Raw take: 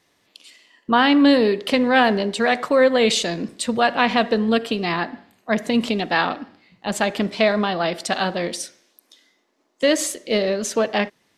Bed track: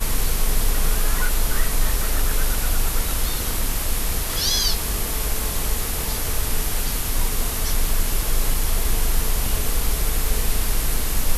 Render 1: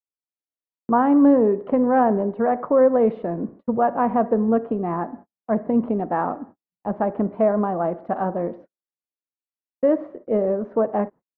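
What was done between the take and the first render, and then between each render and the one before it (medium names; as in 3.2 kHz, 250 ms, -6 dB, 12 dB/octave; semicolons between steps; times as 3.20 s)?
low-pass 1.1 kHz 24 dB/octave; gate -40 dBFS, range -44 dB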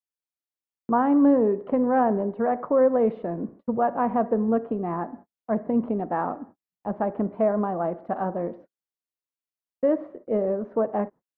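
trim -3.5 dB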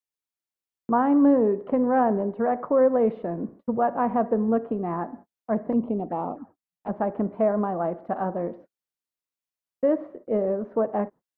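5.72–6.89 s: touch-sensitive flanger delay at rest 8.4 ms, full sweep at -24 dBFS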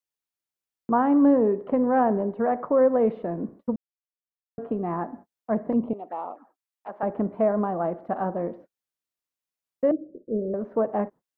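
3.76–4.58 s: mute; 5.93–7.03 s: Bessel high-pass 770 Hz; 9.91–10.54 s: inverse Chebyshev low-pass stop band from 890 Hz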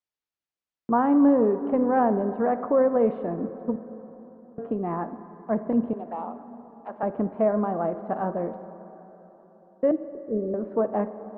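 distance through air 100 m; plate-style reverb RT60 4.1 s, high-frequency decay 0.4×, DRR 12 dB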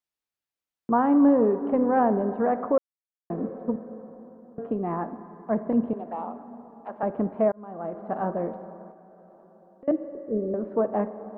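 2.78–3.30 s: mute; 7.52–8.23 s: fade in; 8.91–9.88 s: compression, threshold -47 dBFS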